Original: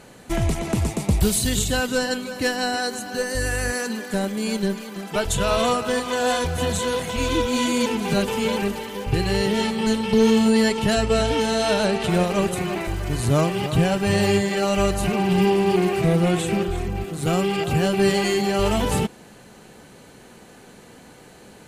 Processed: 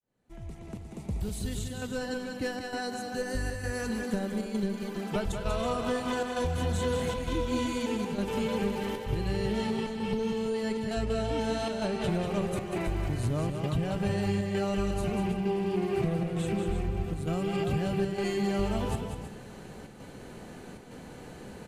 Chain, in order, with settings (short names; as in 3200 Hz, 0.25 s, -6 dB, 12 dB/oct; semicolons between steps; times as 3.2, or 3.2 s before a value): opening faded in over 6.72 s; tilt -1.5 dB/oct; compressor 6:1, threshold -26 dBFS, peak gain reduction 14.5 dB; chopper 1.1 Hz, depth 60%, duty 85%; on a send: tapped delay 0.191/0.322 s -6.5/-11.5 dB; on the sum: gain -1.5 dB